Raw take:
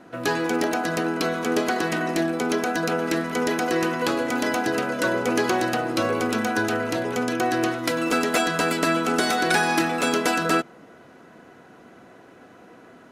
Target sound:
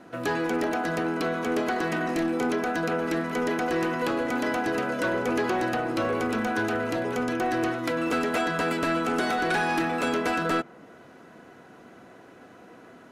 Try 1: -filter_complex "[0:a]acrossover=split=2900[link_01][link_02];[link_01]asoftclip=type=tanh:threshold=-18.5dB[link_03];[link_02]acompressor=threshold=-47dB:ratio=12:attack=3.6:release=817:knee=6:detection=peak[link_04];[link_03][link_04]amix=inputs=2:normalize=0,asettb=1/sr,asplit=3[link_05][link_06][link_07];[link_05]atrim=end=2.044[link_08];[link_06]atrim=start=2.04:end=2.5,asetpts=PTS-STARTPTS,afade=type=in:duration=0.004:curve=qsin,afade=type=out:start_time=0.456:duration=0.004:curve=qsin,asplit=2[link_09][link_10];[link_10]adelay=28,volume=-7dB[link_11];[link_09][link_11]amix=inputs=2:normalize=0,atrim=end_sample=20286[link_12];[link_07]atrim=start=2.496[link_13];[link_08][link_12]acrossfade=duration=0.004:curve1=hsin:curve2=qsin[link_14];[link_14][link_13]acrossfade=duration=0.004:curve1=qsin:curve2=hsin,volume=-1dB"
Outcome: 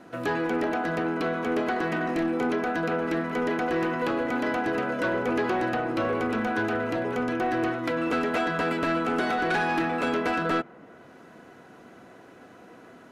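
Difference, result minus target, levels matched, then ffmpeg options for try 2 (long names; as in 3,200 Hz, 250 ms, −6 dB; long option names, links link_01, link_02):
downward compressor: peak gain reduction +9.5 dB
-filter_complex "[0:a]acrossover=split=2900[link_01][link_02];[link_01]asoftclip=type=tanh:threshold=-18.5dB[link_03];[link_02]acompressor=threshold=-36.5dB:ratio=12:attack=3.6:release=817:knee=6:detection=peak[link_04];[link_03][link_04]amix=inputs=2:normalize=0,asettb=1/sr,asplit=3[link_05][link_06][link_07];[link_05]atrim=end=2.044[link_08];[link_06]atrim=start=2.04:end=2.5,asetpts=PTS-STARTPTS,afade=type=in:duration=0.004:curve=qsin,afade=type=out:start_time=0.456:duration=0.004:curve=qsin,asplit=2[link_09][link_10];[link_10]adelay=28,volume=-7dB[link_11];[link_09][link_11]amix=inputs=2:normalize=0,atrim=end_sample=20286[link_12];[link_07]atrim=start=2.496[link_13];[link_08][link_12]acrossfade=duration=0.004:curve1=hsin:curve2=qsin[link_14];[link_14][link_13]acrossfade=duration=0.004:curve1=qsin:curve2=hsin,volume=-1dB"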